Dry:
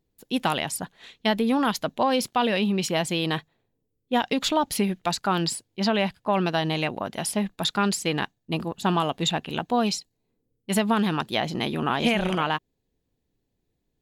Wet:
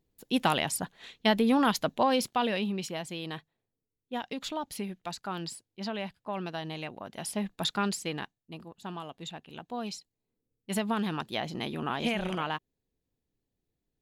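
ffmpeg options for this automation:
ffmpeg -i in.wav -af "volume=15dB,afade=type=out:start_time=1.85:duration=1.14:silence=0.298538,afade=type=in:start_time=7.02:duration=0.6:silence=0.421697,afade=type=out:start_time=7.62:duration=0.92:silence=0.251189,afade=type=in:start_time=9.47:duration=1.28:silence=0.354813" out.wav

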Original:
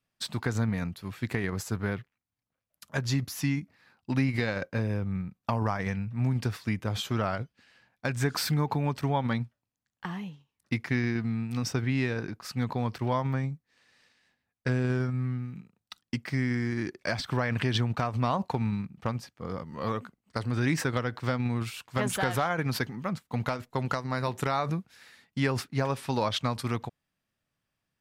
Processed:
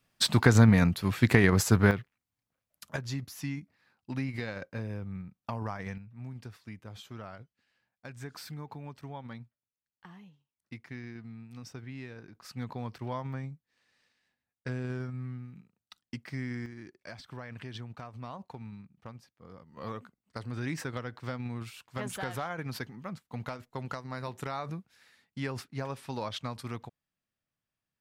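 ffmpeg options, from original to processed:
ffmpeg -i in.wav -af "asetnsamples=nb_out_samples=441:pad=0,asendcmd='1.91 volume volume 1dB;2.96 volume volume -7.5dB;5.98 volume volume -15dB;12.35 volume volume -8dB;16.66 volume volume -15dB;19.77 volume volume -8dB',volume=9dB" out.wav

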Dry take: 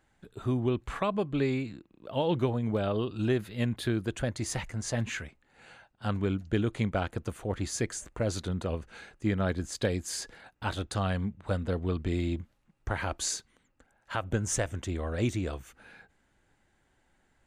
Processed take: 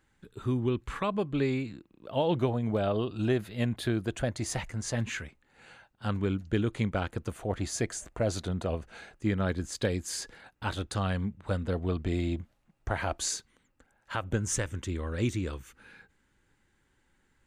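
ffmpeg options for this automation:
ffmpeg -i in.wav -af "asetnsamples=nb_out_samples=441:pad=0,asendcmd='1.04 equalizer g -2.5;2.13 equalizer g 4.5;4.68 equalizer g -3.5;7.31 equalizer g 6;9.17 equalizer g -3;11.74 equalizer g 5;13.21 equalizer g -3.5;14.4 equalizer g -14',equalizer=frequency=680:width_type=o:width=0.35:gain=-13" out.wav

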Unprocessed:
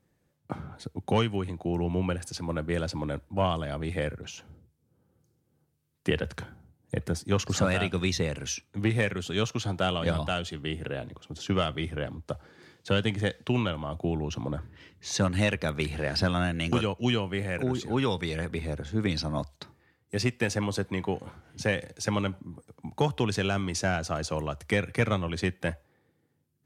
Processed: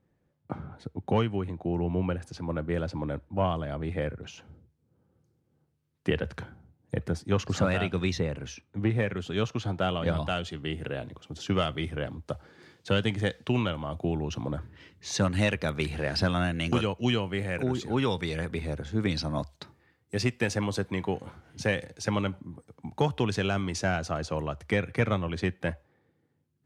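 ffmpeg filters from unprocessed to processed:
ffmpeg -i in.wav -af "asetnsamples=nb_out_samples=441:pad=0,asendcmd='4.21 lowpass f 3000;8.2 lowpass f 1400;9.11 lowpass f 2400;10.17 lowpass f 4800;10.78 lowpass f 9300;21.85 lowpass f 5400;24.11 lowpass f 3200',lowpass=frequency=1700:poles=1" out.wav

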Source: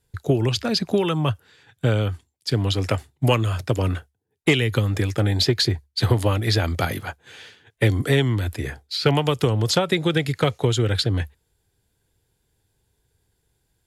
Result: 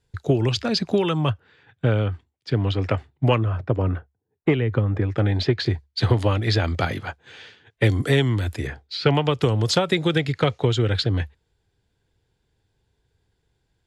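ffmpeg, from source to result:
ffmpeg -i in.wav -af "asetnsamples=nb_out_samples=441:pad=0,asendcmd='1.3 lowpass f 2700;3.38 lowpass f 1400;5.12 lowpass f 2800;5.66 lowpass f 5100;7.84 lowpass f 9100;8.67 lowpass f 4100;9.42 lowpass f 8100;10.2 lowpass f 4900',lowpass=6500" out.wav

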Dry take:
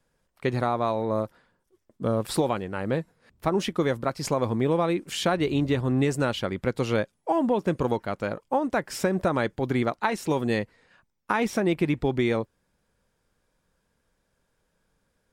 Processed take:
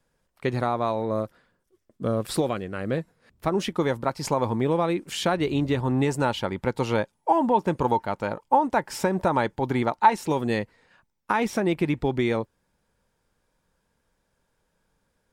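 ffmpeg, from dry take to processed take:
ffmpeg -i in.wav -af "asetnsamples=nb_out_samples=441:pad=0,asendcmd='1.06 equalizer g -5.5;2.47 equalizer g -12;2.98 equalizer g -1;3.72 equalizer g 9.5;4.62 equalizer g 3.5;5.8 equalizer g 13;10.23 equalizer g 4',equalizer=frequency=890:width_type=o:width=0.25:gain=1" out.wav

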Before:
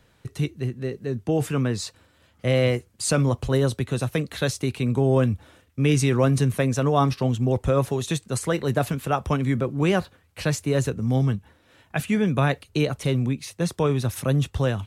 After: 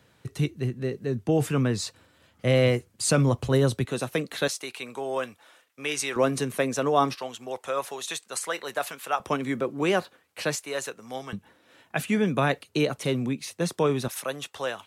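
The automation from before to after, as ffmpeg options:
ffmpeg -i in.wav -af "asetnsamples=nb_out_samples=441:pad=0,asendcmd='3.85 highpass f 240;4.48 highpass f 710;6.16 highpass f 300;7.15 highpass f 760;9.2 highpass f 300;10.55 highpass f 710;11.33 highpass f 200;14.08 highpass f 610',highpass=94" out.wav

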